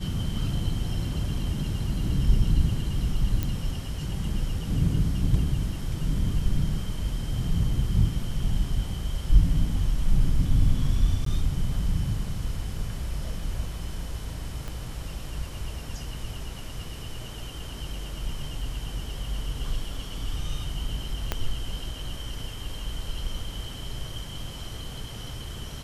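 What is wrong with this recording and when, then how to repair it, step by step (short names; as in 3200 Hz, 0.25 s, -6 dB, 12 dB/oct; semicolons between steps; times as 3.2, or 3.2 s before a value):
3.43 pop -14 dBFS
11.25–11.26 gap 13 ms
14.68 pop -22 dBFS
21.32 pop -11 dBFS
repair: de-click; interpolate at 11.25, 13 ms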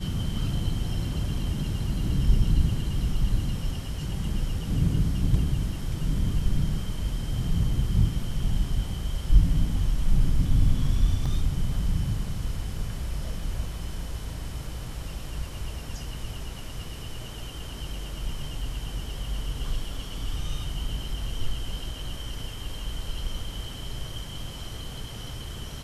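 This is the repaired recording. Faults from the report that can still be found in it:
14.68 pop
21.32 pop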